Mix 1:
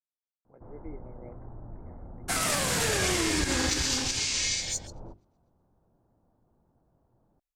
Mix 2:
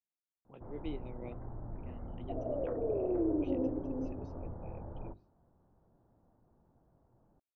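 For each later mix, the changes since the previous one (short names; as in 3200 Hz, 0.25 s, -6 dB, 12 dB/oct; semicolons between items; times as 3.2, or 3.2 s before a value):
speech: remove rippled Chebyshev low-pass 2200 Hz, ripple 6 dB; second sound: add Chebyshev band-pass 260–670 Hz, order 4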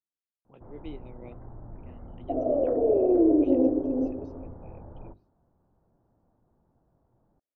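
second sound +11.5 dB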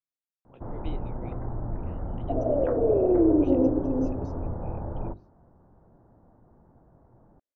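speech: remove air absorption 180 m; first sound +11.5 dB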